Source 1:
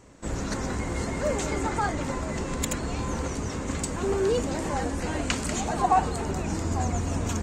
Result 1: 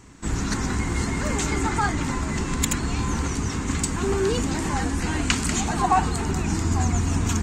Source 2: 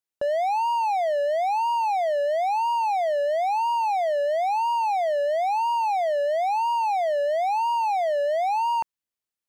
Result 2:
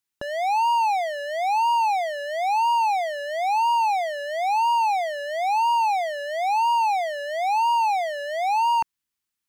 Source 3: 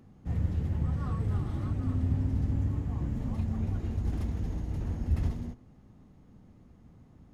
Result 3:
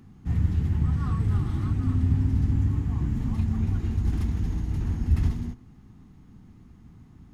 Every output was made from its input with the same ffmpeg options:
-af "equalizer=frequency=560:width=2.3:gain=-15,volume=6dB"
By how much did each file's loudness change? +4.0, +1.0, +6.0 LU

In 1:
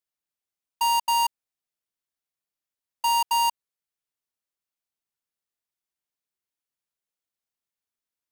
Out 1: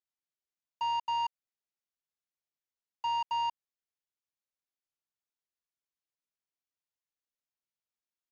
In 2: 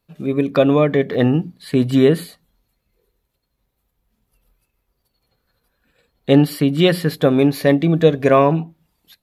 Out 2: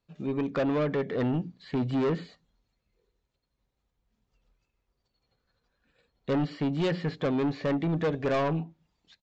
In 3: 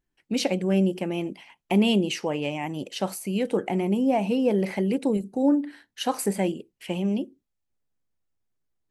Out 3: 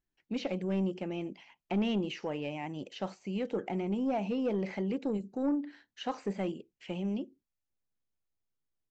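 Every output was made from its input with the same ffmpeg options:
-filter_complex "[0:a]acrossover=split=3300[link_01][link_02];[link_02]acompressor=threshold=-46dB:ratio=4:attack=1:release=60[link_03];[link_01][link_03]amix=inputs=2:normalize=0,aresample=16000,asoftclip=type=tanh:threshold=-15.5dB,aresample=44100,volume=-7.5dB"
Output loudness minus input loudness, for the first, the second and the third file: −9.5, −13.0, −9.0 LU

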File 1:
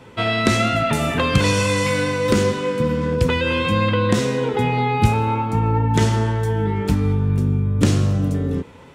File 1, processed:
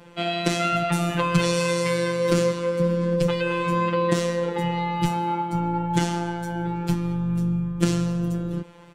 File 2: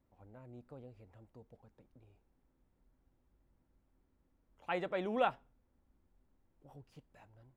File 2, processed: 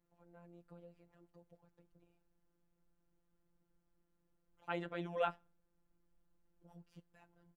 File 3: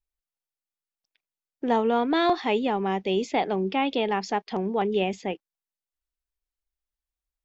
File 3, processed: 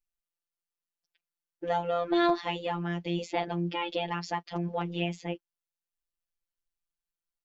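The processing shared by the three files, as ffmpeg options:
-af "aecho=1:1:6.5:0.34,afftfilt=real='hypot(re,im)*cos(PI*b)':imag='0':win_size=1024:overlap=0.75,volume=-1dB"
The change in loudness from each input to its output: −4.5, −4.0, −5.5 LU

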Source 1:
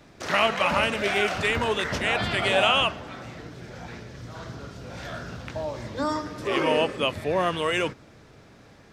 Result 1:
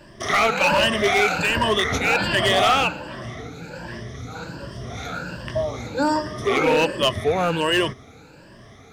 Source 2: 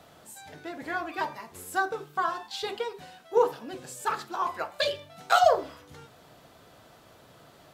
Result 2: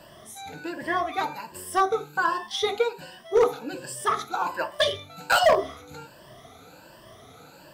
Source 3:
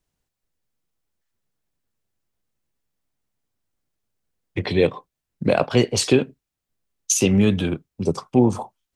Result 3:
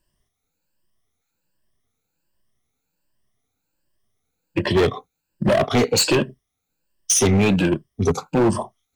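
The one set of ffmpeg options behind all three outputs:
-af "afftfilt=real='re*pow(10,15/40*sin(2*PI*(1.3*log(max(b,1)*sr/1024/100)/log(2)-(1.3)*(pts-256)/sr)))':imag='im*pow(10,15/40*sin(2*PI*(1.3*log(max(b,1)*sr/1024/100)/log(2)-(1.3)*(pts-256)/sr)))':win_size=1024:overlap=0.75,volume=16dB,asoftclip=hard,volume=-16dB,volume=3dB"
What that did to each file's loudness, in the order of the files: +4.0, +3.0, +1.0 LU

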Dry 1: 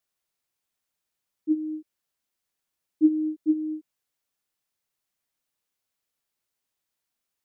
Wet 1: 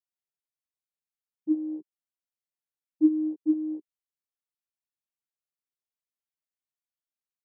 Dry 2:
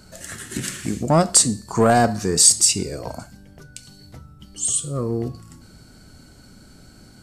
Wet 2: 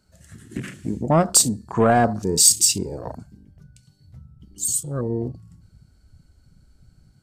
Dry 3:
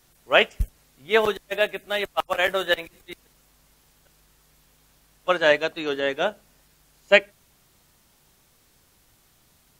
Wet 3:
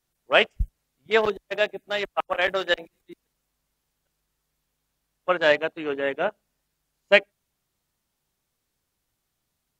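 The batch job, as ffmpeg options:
-af "afwtdn=0.0251,volume=-1dB"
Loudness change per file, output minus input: −1.0, −1.0, −1.0 LU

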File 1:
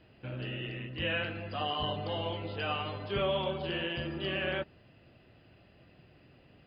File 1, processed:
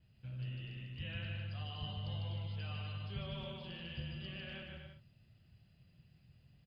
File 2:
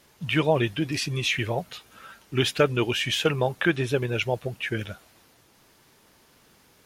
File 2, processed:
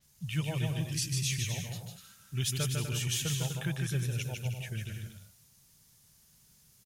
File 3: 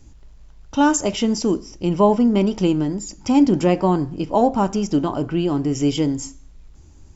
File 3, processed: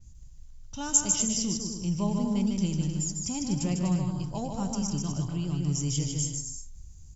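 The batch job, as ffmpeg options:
-filter_complex "[0:a]firequalizer=gain_entry='entry(160,0);entry(290,-18);entry(6400,3)':delay=0.05:min_phase=1,asplit=2[link_01][link_02];[link_02]aecho=0:1:150|247.5|310.9|352.1|378.8:0.631|0.398|0.251|0.158|0.1[link_03];[link_01][link_03]amix=inputs=2:normalize=0,adynamicequalizer=threshold=0.00794:dfrequency=5600:dqfactor=0.7:tfrequency=5600:tqfactor=0.7:attack=5:release=100:ratio=0.375:range=2:mode=boostabove:tftype=highshelf,volume=-4dB"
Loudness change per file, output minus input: −9.5, −8.0, −9.0 LU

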